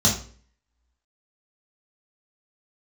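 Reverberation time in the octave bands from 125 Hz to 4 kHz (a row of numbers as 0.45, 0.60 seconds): 0.50, 0.50, 0.50, 0.40, 0.40, 0.40 seconds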